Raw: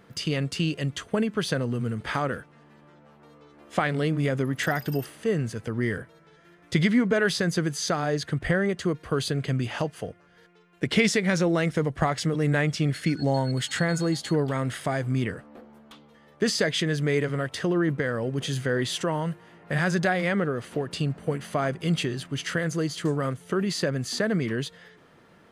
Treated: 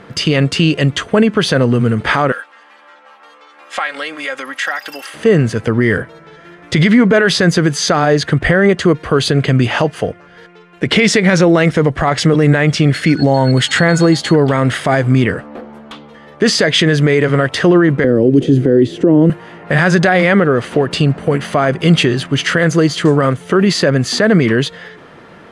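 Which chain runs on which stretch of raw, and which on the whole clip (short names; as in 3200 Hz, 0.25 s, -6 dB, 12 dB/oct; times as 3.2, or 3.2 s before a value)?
2.32–5.14 HPF 1000 Hz + compressor 2:1, threshold -39 dBFS + comb 3.7 ms, depth 60%
18.04–19.3 EQ curve 200 Hz 0 dB, 310 Hz +12 dB, 960 Hz -17 dB + three-band squash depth 100%
whole clip: LPF 10000 Hz 12 dB/oct; tone controls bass -3 dB, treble -6 dB; maximiser +18.5 dB; gain -1 dB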